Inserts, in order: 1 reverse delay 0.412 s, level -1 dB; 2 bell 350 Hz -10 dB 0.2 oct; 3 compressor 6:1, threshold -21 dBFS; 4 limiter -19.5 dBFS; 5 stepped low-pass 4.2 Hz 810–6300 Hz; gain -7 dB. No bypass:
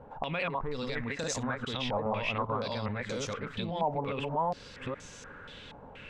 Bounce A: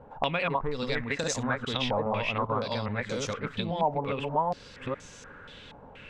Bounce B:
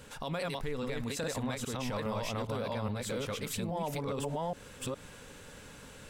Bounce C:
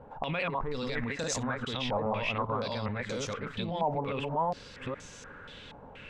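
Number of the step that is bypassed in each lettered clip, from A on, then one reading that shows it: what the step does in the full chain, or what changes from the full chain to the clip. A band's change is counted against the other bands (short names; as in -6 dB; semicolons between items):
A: 4, mean gain reduction 2.0 dB; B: 5, 1 kHz band -5.0 dB; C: 3, mean gain reduction 3.5 dB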